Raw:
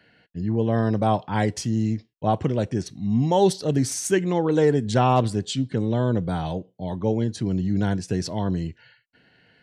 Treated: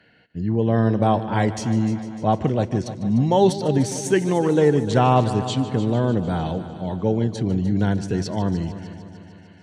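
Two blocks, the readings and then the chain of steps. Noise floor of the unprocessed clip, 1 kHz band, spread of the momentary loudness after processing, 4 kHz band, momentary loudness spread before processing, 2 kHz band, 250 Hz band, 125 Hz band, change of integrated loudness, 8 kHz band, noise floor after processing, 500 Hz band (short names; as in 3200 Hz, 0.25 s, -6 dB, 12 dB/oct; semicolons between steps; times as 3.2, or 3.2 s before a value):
-63 dBFS, +2.5 dB, 10 LU, +0.5 dB, 8 LU, +2.0 dB, +2.5 dB, +2.5 dB, +2.5 dB, -1.5 dB, -47 dBFS, +2.5 dB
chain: high shelf 8800 Hz -10.5 dB; notch 5000 Hz, Q 14; multi-head echo 0.15 s, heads first and second, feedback 60%, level -16 dB; gain +2 dB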